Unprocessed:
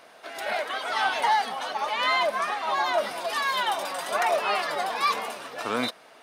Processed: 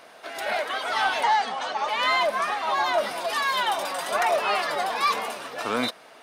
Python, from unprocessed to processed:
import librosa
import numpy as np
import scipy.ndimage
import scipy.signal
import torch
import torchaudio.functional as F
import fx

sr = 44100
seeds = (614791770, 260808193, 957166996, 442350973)

p1 = fx.ellip_bandpass(x, sr, low_hz=110.0, high_hz=7800.0, order=3, stop_db=40, at=(1.23, 1.89))
p2 = 10.0 ** (-27.5 / 20.0) * np.tanh(p1 / 10.0 ** (-27.5 / 20.0))
y = p1 + (p2 * librosa.db_to_amplitude(-9.0))